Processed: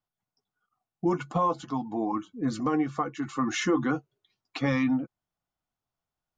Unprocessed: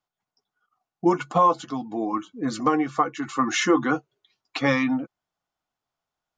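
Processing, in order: low shelf 230 Hz +11.5 dB; limiter -9.5 dBFS, peak gain reduction 4 dB; 1.62–2.12 bell 920 Hz +10.5 dB 0.49 oct; gain -6.5 dB

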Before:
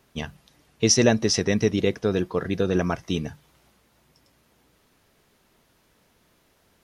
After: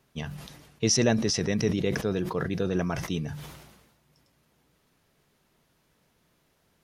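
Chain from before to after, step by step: bell 150 Hz +6 dB 0.45 oct; sustainer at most 48 dB/s; gain -6 dB

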